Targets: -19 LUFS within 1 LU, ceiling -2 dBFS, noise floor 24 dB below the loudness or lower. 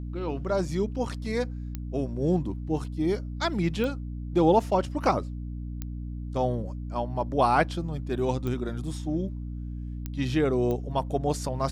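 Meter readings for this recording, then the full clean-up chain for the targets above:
clicks found 6; hum 60 Hz; highest harmonic 300 Hz; hum level -32 dBFS; loudness -28.5 LUFS; peak level -9.0 dBFS; loudness target -19.0 LUFS
-> de-click; de-hum 60 Hz, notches 5; trim +9.5 dB; peak limiter -2 dBFS

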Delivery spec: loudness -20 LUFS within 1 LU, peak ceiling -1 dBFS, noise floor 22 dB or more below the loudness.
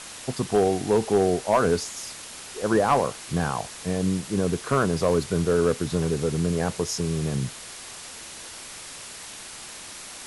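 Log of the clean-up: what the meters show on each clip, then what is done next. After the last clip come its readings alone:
clipped samples 0.3%; clipping level -12.5 dBFS; noise floor -41 dBFS; noise floor target -47 dBFS; loudness -24.5 LUFS; peak level -12.5 dBFS; loudness target -20.0 LUFS
-> clip repair -12.5 dBFS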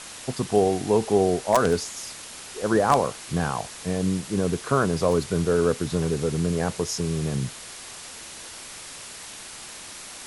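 clipped samples 0.0%; noise floor -41 dBFS; noise floor target -47 dBFS
-> noise reduction 6 dB, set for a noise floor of -41 dBFS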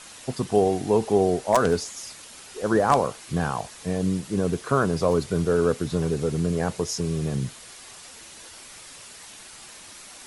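noise floor -45 dBFS; noise floor target -47 dBFS
-> noise reduction 6 dB, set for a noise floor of -45 dBFS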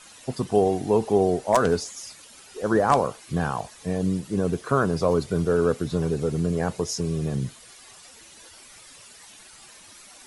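noise floor -49 dBFS; loudness -24.5 LUFS; peak level -4.0 dBFS; loudness target -20.0 LUFS
-> trim +4.5 dB; peak limiter -1 dBFS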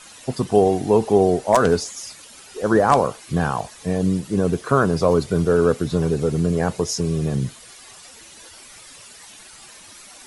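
loudness -20.0 LUFS; peak level -1.0 dBFS; noise floor -44 dBFS

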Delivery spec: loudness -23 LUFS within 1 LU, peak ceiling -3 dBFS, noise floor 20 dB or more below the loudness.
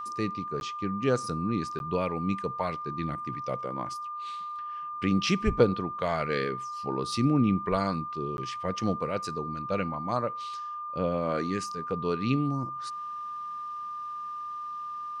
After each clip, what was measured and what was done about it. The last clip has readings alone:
dropouts 3; longest dropout 11 ms; steady tone 1.2 kHz; tone level -34 dBFS; loudness -30.5 LUFS; peak level -10.0 dBFS; loudness target -23.0 LUFS
-> interpolate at 0.60/1.79/8.37 s, 11 ms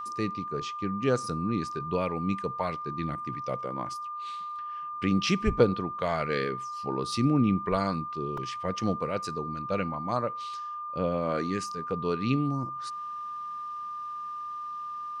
dropouts 0; steady tone 1.2 kHz; tone level -34 dBFS
-> band-stop 1.2 kHz, Q 30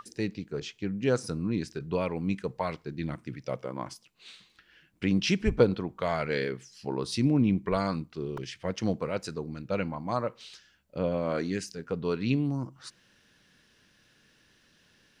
steady tone not found; loudness -31.0 LUFS; peak level -9.5 dBFS; loudness target -23.0 LUFS
-> trim +8 dB; peak limiter -3 dBFS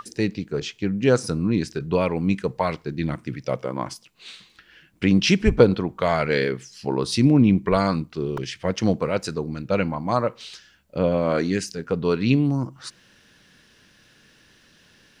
loudness -23.0 LUFS; peak level -3.0 dBFS; noise floor -57 dBFS

